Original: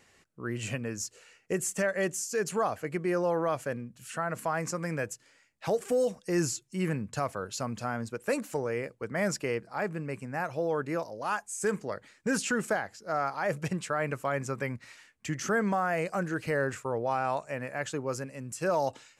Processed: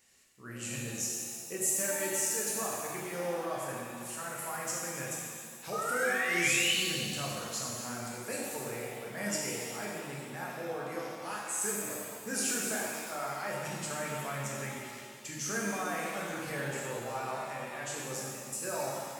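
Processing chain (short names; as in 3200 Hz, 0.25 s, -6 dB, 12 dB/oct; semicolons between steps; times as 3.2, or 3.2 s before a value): painted sound rise, 5.72–6.73, 1200–3100 Hz -27 dBFS; pre-emphasis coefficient 0.8; shimmer reverb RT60 2 s, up +7 st, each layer -8 dB, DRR -4.5 dB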